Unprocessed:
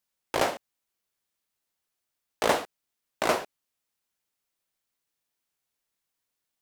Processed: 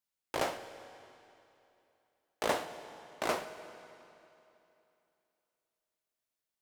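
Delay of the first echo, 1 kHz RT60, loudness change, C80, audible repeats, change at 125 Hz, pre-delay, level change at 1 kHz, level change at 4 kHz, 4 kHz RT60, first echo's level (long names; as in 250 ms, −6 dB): no echo audible, 2.9 s, −8.5 dB, 11.5 dB, no echo audible, −7.0 dB, 18 ms, −7.0 dB, −7.0 dB, 2.6 s, no echo audible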